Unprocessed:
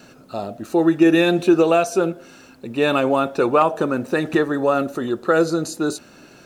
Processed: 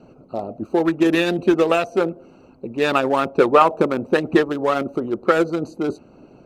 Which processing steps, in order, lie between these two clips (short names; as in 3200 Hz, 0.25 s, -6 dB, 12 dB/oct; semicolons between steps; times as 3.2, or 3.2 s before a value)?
Wiener smoothing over 25 samples; harmonic-percussive split percussive +9 dB; gain -3.5 dB